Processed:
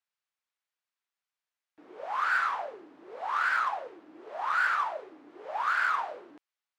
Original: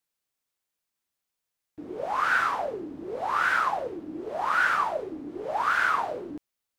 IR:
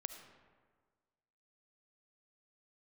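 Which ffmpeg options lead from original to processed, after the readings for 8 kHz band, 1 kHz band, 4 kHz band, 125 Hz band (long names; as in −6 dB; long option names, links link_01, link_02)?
can't be measured, −3.5 dB, −4.5 dB, below −20 dB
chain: -filter_complex "[0:a]highpass=1100,aemphasis=mode=reproduction:type=riaa,asplit=2[link_01][link_02];[link_02]asoftclip=type=hard:threshold=-31dB,volume=-7dB[link_03];[link_01][link_03]amix=inputs=2:normalize=0,volume=-2dB"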